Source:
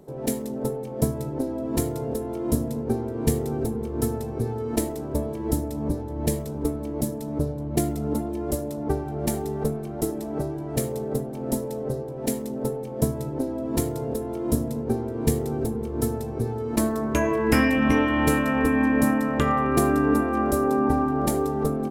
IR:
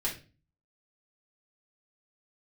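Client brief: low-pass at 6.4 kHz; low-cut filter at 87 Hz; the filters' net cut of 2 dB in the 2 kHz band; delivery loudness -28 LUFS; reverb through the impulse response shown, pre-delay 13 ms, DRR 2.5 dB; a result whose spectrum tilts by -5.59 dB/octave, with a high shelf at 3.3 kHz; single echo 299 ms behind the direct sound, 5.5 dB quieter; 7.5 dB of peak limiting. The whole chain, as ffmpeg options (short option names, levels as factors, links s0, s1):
-filter_complex "[0:a]highpass=87,lowpass=6400,equalizer=f=2000:t=o:g=-4.5,highshelf=f=3300:g=7.5,alimiter=limit=0.168:level=0:latency=1,aecho=1:1:299:0.531,asplit=2[s0][s1];[1:a]atrim=start_sample=2205,adelay=13[s2];[s1][s2]afir=irnorm=-1:irlink=0,volume=0.422[s3];[s0][s3]amix=inputs=2:normalize=0,volume=0.668"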